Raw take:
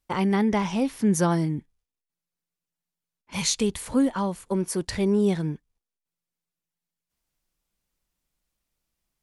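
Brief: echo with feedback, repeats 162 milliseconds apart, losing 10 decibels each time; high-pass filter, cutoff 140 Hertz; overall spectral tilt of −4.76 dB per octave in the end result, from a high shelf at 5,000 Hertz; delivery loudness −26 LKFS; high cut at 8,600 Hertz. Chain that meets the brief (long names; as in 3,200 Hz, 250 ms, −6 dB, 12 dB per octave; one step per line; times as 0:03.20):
high-pass filter 140 Hz
low-pass filter 8,600 Hz
high-shelf EQ 5,000 Hz +3.5 dB
repeating echo 162 ms, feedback 32%, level −10 dB
level −1 dB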